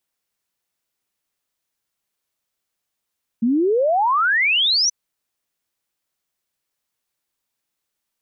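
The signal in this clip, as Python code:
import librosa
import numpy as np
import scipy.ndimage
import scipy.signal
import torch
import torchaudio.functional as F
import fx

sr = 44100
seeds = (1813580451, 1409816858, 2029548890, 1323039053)

y = fx.ess(sr, length_s=1.48, from_hz=220.0, to_hz=6100.0, level_db=-14.5)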